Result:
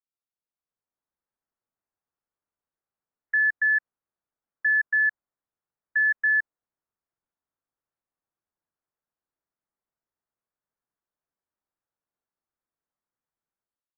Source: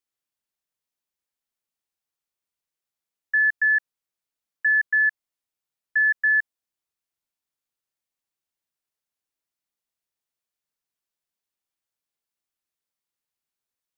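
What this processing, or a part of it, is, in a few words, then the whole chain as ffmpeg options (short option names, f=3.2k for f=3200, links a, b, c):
action camera in a waterproof case: -af "lowpass=f=1.6k:w=0.5412,lowpass=f=1.6k:w=1.3066,dynaudnorm=f=500:g=3:m=11dB,volume=-8.5dB" -ar 24000 -c:a aac -b:a 96k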